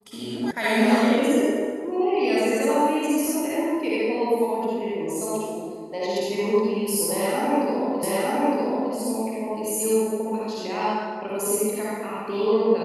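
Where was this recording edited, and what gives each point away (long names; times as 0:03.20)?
0:00.51: cut off before it has died away
0:08.03: the same again, the last 0.91 s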